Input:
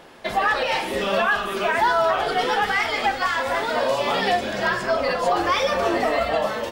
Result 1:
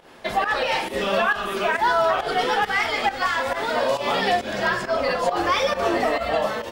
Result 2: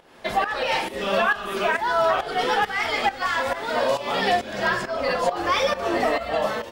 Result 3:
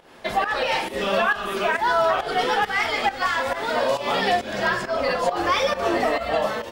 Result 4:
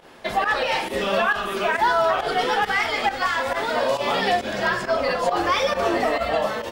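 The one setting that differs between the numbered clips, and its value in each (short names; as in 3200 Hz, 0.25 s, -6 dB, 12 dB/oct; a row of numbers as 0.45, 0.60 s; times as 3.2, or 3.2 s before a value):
pump, release: 130, 361, 203, 79 ms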